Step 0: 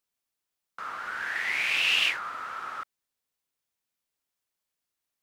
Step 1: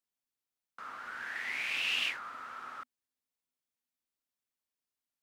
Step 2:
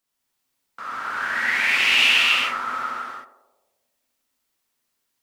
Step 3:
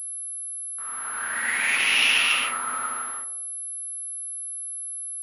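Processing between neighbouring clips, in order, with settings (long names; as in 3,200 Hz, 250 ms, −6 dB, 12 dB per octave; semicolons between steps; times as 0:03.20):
parametric band 250 Hz +9 dB 0.23 octaves; level −8 dB
feedback echo with a band-pass in the loop 88 ms, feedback 68%, band-pass 550 Hz, level −10.5 dB; reverb whose tail is shaped and stops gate 430 ms flat, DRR −6.5 dB; level +9 dB
fade in at the beginning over 1.71 s; switching amplifier with a slow clock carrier 11,000 Hz; level −3 dB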